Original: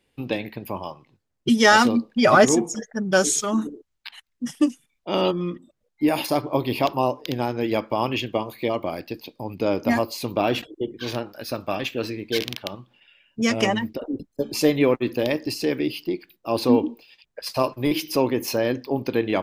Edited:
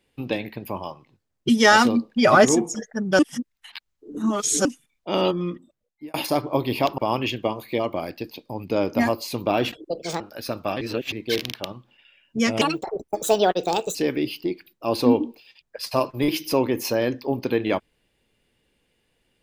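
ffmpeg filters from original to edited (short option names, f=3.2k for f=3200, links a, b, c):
-filter_complex "[0:a]asplit=11[a][b][c][d][e][f][g][h][i][j][k];[a]atrim=end=3.192[l];[b]atrim=start=3.188:end=4.652,asetpts=PTS-STARTPTS,areverse[m];[c]atrim=start=4.648:end=6.14,asetpts=PTS-STARTPTS,afade=t=out:st=0.842:d=0.65[n];[d]atrim=start=6.14:end=6.982,asetpts=PTS-STARTPTS,afade=t=in:d=0.004:c=hsin[o];[e]atrim=start=7.878:end=10.794[p];[f]atrim=start=10.79:end=11.23,asetpts=PTS-STARTPTS,asetrate=62181,aresample=44100[q];[g]atrim=start=11.226:end=11.842[r];[h]atrim=start=11.838:end=12.152,asetpts=PTS-STARTPTS,areverse[s];[i]atrim=start=12.148:end=13.644[t];[j]atrim=start=13.64:end=15.58,asetpts=PTS-STARTPTS,asetrate=63945,aresample=44100[u];[k]atrim=start=15.576[v];[l][m]acrossfade=d=0.004:c1=hsin:c2=hsin[w];[n][o]concat=n=2:v=0:a=1[x];[w][x]acrossfade=d=0.004:c1=hsin:c2=hsin[y];[y][p]acrossfade=d=0.004:c1=hsin:c2=hsin[z];[z][q]acrossfade=d=0.004:c1=hsin:c2=hsin[aa];[aa][r]acrossfade=d=0.004:c1=hsin:c2=hsin[ab];[ab][s]acrossfade=d=0.004:c1=hsin:c2=hsin[ac];[ac][t]acrossfade=d=0.004:c1=hsin:c2=hsin[ad];[ad][u]acrossfade=d=0.004:c1=hsin:c2=hsin[ae];[ae][v]acrossfade=d=0.004:c1=hsin:c2=hsin"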